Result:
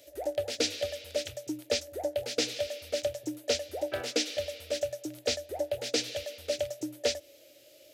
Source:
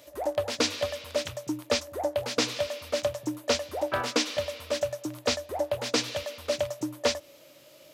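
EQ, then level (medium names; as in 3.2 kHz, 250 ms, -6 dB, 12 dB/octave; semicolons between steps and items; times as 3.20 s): static phaser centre 440 Hz, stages 4; -1.5 dB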